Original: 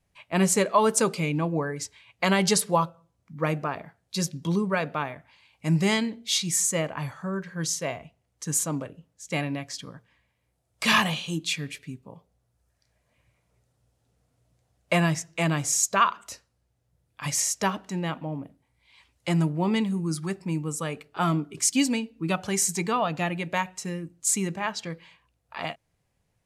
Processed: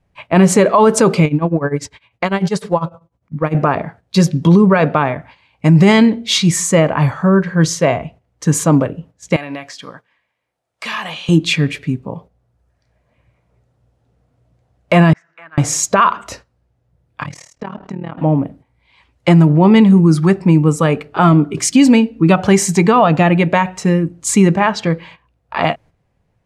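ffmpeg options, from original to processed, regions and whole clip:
-filter_complex "[0:a]asettb=1/sr,asplit=3[s0][s1][s2];[s0]atrim=end=1.254[s3];[s1]atrim=start=1.25:end=3.55,asetpts=PTS-STARTPTS,afade=t=in:d=0.004:c=qsin,afade=t=out:st=2.296:d=0.004:c=qsin,acompressor=threshold=0.0447:ratio=6:attack=3.2:release=140:knee=1:detection=peak,tremolo=f=10:d=0.89[s4];[s2]atrim=start=3.546[s5];[s3][s4]acrossfade=d=0.004:c1=hsin:c2=qsin[s6];[s6][s5]acrossfade=d=0.004:c1=qsin:c2=hsin,asettb=1/sr,asplit=3[s7][s8][s9];[s7]atrim=end=9.364[s10];[s8]atrim=start=9.36:end=11.29,asetpts=PTS-STARTPTS,afade=t=in:d=0.004:c=qsin,afade=t=out:st=1.926:d=0.004:c=qsin,highpass=f=1100:p=1,acompressor=threshold=0.01:ratio=3:attack=3.2:release=140:knee=1:detection=peak[s11];[s9]atrim=start=11.286[s12];[s10][s11]acrossfade=d=0.004:c1=hsin:c2=qsin[s13];[s13][s12]acrossfade=d=0.004:c1=qsin:c2=hsin,asettb=1/sr,asplit=3[s14][s15][s16];[s14]atrim=end=15.134[s17];[s15]atrim=start=15.13:end=15.58,asetpts=PTS-STARTPTS,afade=t=in:d=0.004:c=qsin,afade=t=out:st=0.446:d=0.004:c=qsin,acompressor=threshold=0.00501:ratio=2.5:attack=3.2:release=140:knee=1:detection=peak,bandpass=f=1500:t=q:w=3.5[s18];[s16]atrim=start=15.576[s19];[s17][s18]acrossfade=d=0.004:c1=hsin:c2=qsin[s20];[s20][s19]acrossfade=d=0.004:c1=qsin:c2=hsin,asettb=1/sr,asplit=3[s21][s22][s23];[s21]atrim=end=17.234[s24];[s22]atrim=start=17.23:end=18.18,asetpts=PTS-STARTPTS,afade=t=in:d=0.004:c=qsin,afade=t=out:st=0.946:d=0.004:c=qsin,aemphasis=mode=reproduction:type=50kf,acompressor=threshold=0.01:ratio=5:attack=3.2:release=140:knee=1:detection=peak,tremolo=f=38:d=0.919[s25];[s23]atrim=start=18.176[s26];[s24][s25]acrossfade=d=0.004:c1=hsin:c2=qsin[s27];[s27][s26]acrossfade=d=0.004:c1=qsin:c2=hsin,lowpass=f=1400:p=1,agate=range=0.355:threshold=0.00141:ratio=16:detection=peak,alimiter=level_in=10.6:limit=0.891:release=50:level=0:latency=1,volume=0.891"

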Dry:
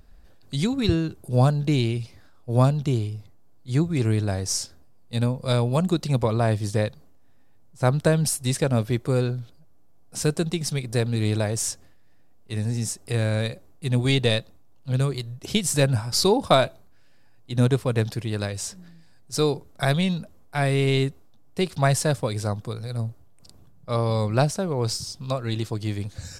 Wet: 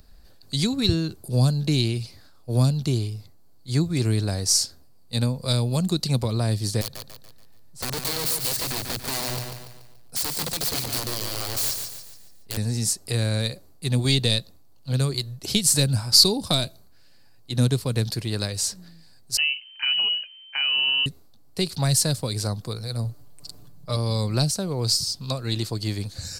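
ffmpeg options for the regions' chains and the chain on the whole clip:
-filter_complex "[0:a]asettb=1/sr,asplit=3[s0][s1][s2];[s0]atrim=end=6.814[s3];[s1]atrim=start=6.81:end=12.57,asetpts=PTS-STARTPTS,afade=t=in:d=0.004:c=qsin,afade=t=out:st=5.756:d=0.004:c=qsin,acompressor=threshold=0.0447:ratio=4:attack=3.2:release=140:knee=1:detection=peak,aeval=exprs='(mod(22.4*val(0)+1,2)-1)/22.4':c=same,aecho=1:1:143|286|429|572|715:0.473|0.203|0.0875|0.0376|0.0162,atrim=end_sample=254016[s4];[s2]atrim=start=12.566[s5];[s3][s4]acrossfade=d=0.004:c1=hsin:c2=qsin[s6];[s6][s5]acrossfade=d=0.004:c1=qsin:c2=hsin,asettb=1/sr,asplit=3[s7][s8][s9];[s7]atrim=end=19.374[s10];[s8]atrim=start=19.37:end=21.06,asetpts=PTS-STARTPTS,afade=t=in:d=0.004:c=qsin,afade=t=out:st=1.686:d=0.004:c=qsin,deesser=0.85,lowpass=f=2600:t=q:w=0.5098,lowpass=f=2600:t=q:w=0.6013,lowpass=f=2600:t=q:w=0.9,lowpass=f=2600:t=q:w=2.563,afreqshift=-3100[s11];[s9]atrim=start=21.056[s12];[s10][s11]acrossfade=d=0.004:c1=hsin:c2=qsin[s13];[s13][s12]acrossfade=d=0.004:c1=qsin:c2=hsin,asettb=1/sr,asplit=3[s14][s15][s16];[s14]atrim=end=23.044[s17];[s15]atrim=start=23.04:end=23.96,asetpts=PTS-STARTPTS,afade=t=in:d=0.004:c=qsin,afade=t=out:st=0.916:d=0.004:c=qsin,aecho=1:1:6.8:0.63,atrim=end_sample=40572,acompressor=mode=upward:threshold=0.0126:ratio=2.5:attack=3.2:release=140:knee=2.83:detection=peak[s18];[s16]atrim=start=23.956[s19];[s17][s18]acrossfade=d=0.004:c1=hsin:c2=qsin[s20];[s20][s19]acrossfade=d=0.004:c1=qsin:c2=hsin,equalizer=f=4400:t=o:w=0.33:g=10.5,acrossover=split=310|3000[s21][s22][s23];[s22]acompressor=threshold=0.0316:ratio=6[s24];[s21][s24][s23]amix=inputs=3:normalize=0,highshelf=f=7100:g=10.5"

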